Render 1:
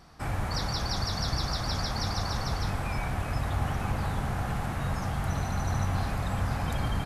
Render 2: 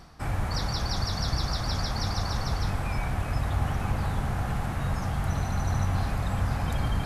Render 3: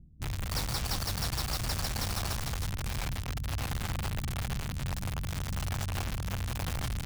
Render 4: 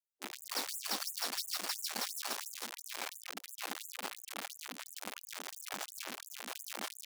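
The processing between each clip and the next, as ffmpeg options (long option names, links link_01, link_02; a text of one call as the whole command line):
ffmpeg -i in.wav -af "lowshelf=frequency=110:gain=4,areverse,acompressor=mode=upward:threshold=-32dB:ratio=2.5,areverse" out.wav
ffmpeg -i in.wav -filter_complex "[0:a]acrossover=split=260[link_01][link_02];[link_01]alimiter=level_in=2dB:limit=-24dB:level=0:latency=1:release=76,volume=-2dB[link_03];[link_02]acrusher=bits=4:mix=0:aa=0.000001[link_04];[link_03][link_04]amix=inputs=2:normalize=0,volume=-2dB" out.wav
ffmpeg -i in.wav -af "afftfilt=real='re*gte(b*sr/1024,200*pow(6900/200,0.5+0.5*sin(2*PI*2.9*pts/sr)))':imag='im*gte(b*sr/1024,200*pow(6900/200,0.5+0.5*sin(2*PI*2.9*pts/sr)))':win_size=1024:overlap=0.75,volume=-1.5dB" out.wav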